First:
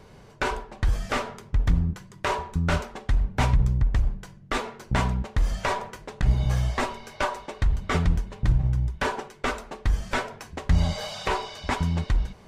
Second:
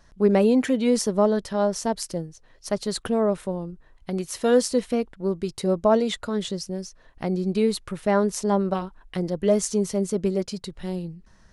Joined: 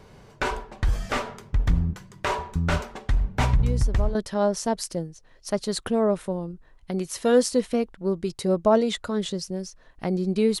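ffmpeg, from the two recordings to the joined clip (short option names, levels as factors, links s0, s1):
-filter_complex "[1:a]asplit=2[s0][s1];[0:a]apad=whole_dur=10.6,atrim=end=10.6,atrim=end=4.152[s2];[s1]atrim=start=1.338:end=7.79[s3];[s0]atrim=start=0.82:end=1.34,asetpts=PTS-STARTPTS,volume=0.266,afade=t=in:d=0.004:c=hsin,afade=t=out:st=0.516:d=0.004:c=hsin,adelay=3630[s4];[s2][s3]acrossfade=d=0.004:c1=hsin:c2=hsin[s5];[s5][s4]amix=inputs=2:normalize=0"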